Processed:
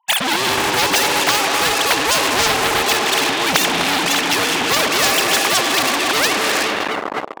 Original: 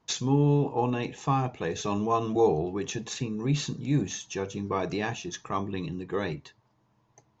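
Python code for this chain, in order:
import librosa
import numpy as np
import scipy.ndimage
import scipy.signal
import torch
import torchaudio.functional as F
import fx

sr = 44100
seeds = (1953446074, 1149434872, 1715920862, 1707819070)

y = fx.sine_speech(x, sr)
y = fx.high_shelf(y, sr, hz=2200.0, db=10.5)
y = fx.echo_bbd(y, sr, ms=252, stages=2048, feedback_pct=61, wet_db=-11)
y = fx.rev_gated(y, sr, seeds[0], gate_ms=400, shape='rising', drr_db=6.5)
y = fx.rider(y, sr, range_db=4, speed_s=2.0)
y = fx.leveller(y, sr, passes=5)
y = fx.highpass(y, sr, hz=430.0, slope=6)
y = fx.peak_eq(y, sr, hz=780.0, db=13.5, octaves=0.65)
y = fx.spectral_comp(y, sr, ratio=4.0)
y = y * 10.0 ** (-6.5 / 20.0)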